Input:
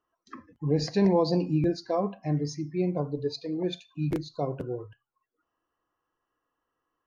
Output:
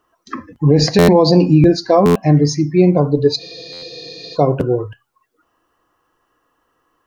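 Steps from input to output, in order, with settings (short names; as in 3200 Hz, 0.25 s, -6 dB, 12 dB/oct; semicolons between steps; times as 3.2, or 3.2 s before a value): maximiser +18 dB; spectral freeze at 3.41, 0.94 s; stuck buffer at 0.98/2.05/3.72, samples 512, times 8; gain -1 dB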